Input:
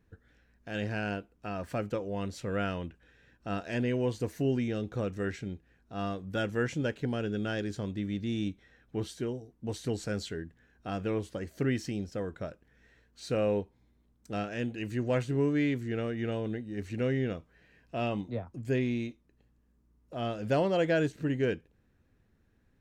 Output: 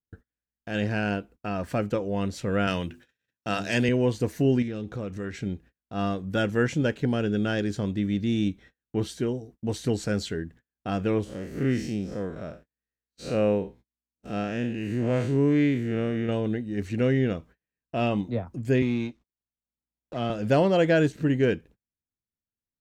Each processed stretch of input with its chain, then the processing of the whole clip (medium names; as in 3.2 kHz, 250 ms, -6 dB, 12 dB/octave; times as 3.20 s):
2.67–3.89 s: high-pass 78 Hz 24 dB/octave + treble shelf 2.4 kHz +12 dB + hum notches 50/100/150/200/250/300/350/400 Hz
4.62–5.42 s: compression 2.5:1, threshold -39 dBFS + loudspeaker Doppler distortion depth 0.1 ms
11.24–16.29 s: spectral blur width 126 ms + peaking EQ 89 Hz -5.5 dB 0.26 oct
18.82–20.30 s: companding laws mixed up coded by A + low-pass 6.1 kHz + three bands compressed up and down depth 40%
whole clip: gate -54 dBFS, range -37 dB; peaking EQ 200 Hz +2.5 dB 1.2 oct; trim +5.5 dB